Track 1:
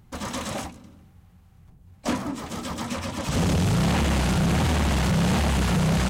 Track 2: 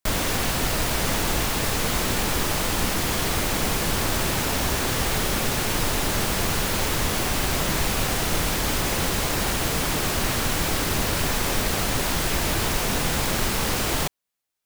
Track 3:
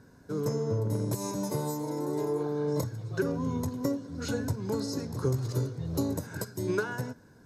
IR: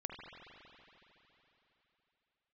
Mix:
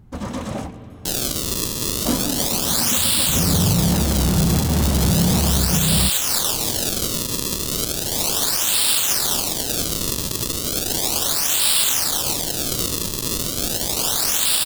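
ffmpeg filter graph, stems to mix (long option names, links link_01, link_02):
-filter_complex "[0:a]tiltshelf=frequency=880:gain=5.5,volume=-1dB,asplit=2[link_01][link_02];[link_02]volume=-7dB[link_03];[1:a]highpass=1200,acrusher=samples=33:mix=1:aa=0.000001:lfo=1:lforange=52.8:lforate=0.35,aexciter=amount=7.6:drive=5.1:freq=3100,adelay=1000,volume=0dB[link_04];[2:a]volume=-16.5dB[link_05];[3:a]atrim=start_sample=2205[link_06];[link_03][link_06]afir=irnorm=-1:irlink=0[link_07];[link_01][link_04][link_05][link_07]amix=inputs=4:normalize=0,alimiter=limit=-5.5dB:level=0:latency=1:release=231"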